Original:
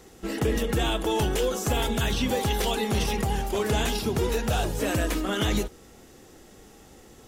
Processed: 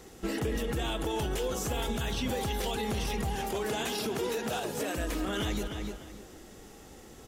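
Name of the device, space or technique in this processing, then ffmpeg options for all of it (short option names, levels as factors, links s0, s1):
stacked limiters: -filter_complex "[0:a]asettb=1/sr,asplit=3[s0][s1][s2];[s0]atrim=end=3.354[s3];[s1]atrim=start=3.35:end=4.98,asetpts=PTS-STARTPTS,afade=t=in:d=0.004:c=qsin,afade=t=out:st=1.626:d=0.004:c=qsin,highpass=210[s4];[s2]atrim=start=4.976[s5];[s3][s4]acrossfade=d=0.004:c1=hsin:c2=qsin[s6];[s6][s5]acrossfade=d=0.004:c1=qsin:c2=hsin,asplit=2[s7][s8];[s8]adelay=298,lowpass=f=4600:p=1,volume=0.251,asplit=2[s9][s10];[s10]adelay=298,lowpass=f=4600:p=1,volume=0.27,asplit=2[s11][s12];[s12]adelay=298,lowpass=f=4600:p=1,volume=0.27[s13];[s7][s9][s11][s13]amix=inputs=4:normalize=0,alimiter=limit=0.126:level=0:latency=1:release=255,alimiter=limit=0.0668:level=0:latency=1:release=70"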